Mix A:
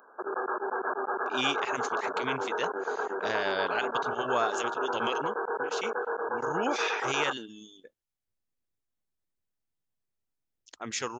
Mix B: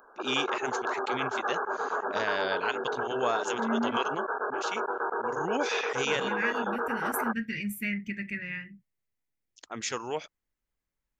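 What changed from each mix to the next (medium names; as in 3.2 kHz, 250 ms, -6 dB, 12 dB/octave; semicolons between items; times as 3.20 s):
first voice: entry -1.10 s; second voice: unmuted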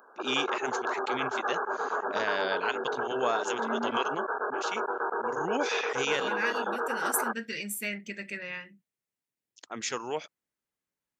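second voice: add graphic EQ 125/250/500/1000/2000/4000/8000 Hz -10/-6/+10/+11/-8/+9/+11 dB; master: add high-pass 140 Hz 12 dB/octave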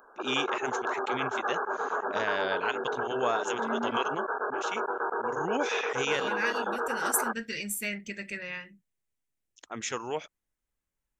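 first voice: add peaking EQ 4.6 kHz -9.5 dB 0.28 oct; second voice: add peaking EQ 7.1 kHz +4 dB 0.97 oct; master: remove high-pass 140 Hz 12 dB/octave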